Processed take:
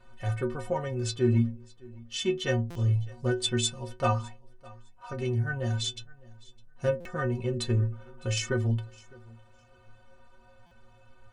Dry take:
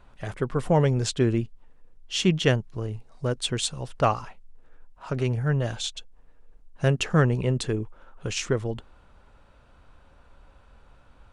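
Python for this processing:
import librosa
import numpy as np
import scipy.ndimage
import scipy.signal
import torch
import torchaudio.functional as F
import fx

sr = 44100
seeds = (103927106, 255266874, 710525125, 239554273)

p1 = fx.rider(x, sr, range_db=4, speed_s=0.5)
p2 = fx.stiff_resonator(p1, sr, f0_hz=110.0, decay_s=0.42, stiffness=0.03)
p3 = p2 + fx.echo_feedback(p2, sr, ms=608, feedback_pct=18, wet_db=-23.5, dry=0)
p4 = fx.buffer_glitch(p3, sr, at_s=(2.7, 7.0, 10.66), block=256, repeats=8)
y = p4 * 10.0 ** (7.5 / 20.0)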